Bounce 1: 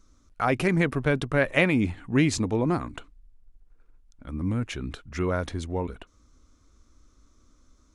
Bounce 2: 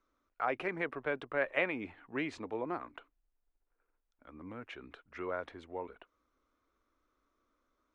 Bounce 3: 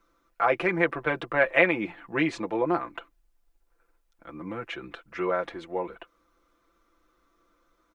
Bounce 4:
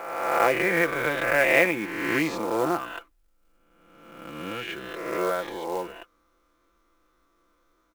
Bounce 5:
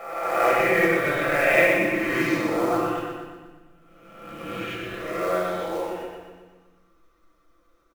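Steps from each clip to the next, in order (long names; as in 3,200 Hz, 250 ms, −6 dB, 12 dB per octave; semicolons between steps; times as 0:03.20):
three-way crossover with the lows and the highs turned down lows −20 dB, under 350 Hz, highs −23 dB, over 3,100 Hz; level −7.5 dB
comb filter 5.9 ms, depth 73%; level +9 dB
peak hold with a rise ahead of every peak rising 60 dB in 1.38 s; floating-point word with a short mantissa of 2 bits; level −2 dB
repeating echo 122 ms, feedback 52%, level −5.5 dB; convolution reverb RT60 1.1 s, pre-delay 6 ms, DRR −2 dB; level −6.5 dB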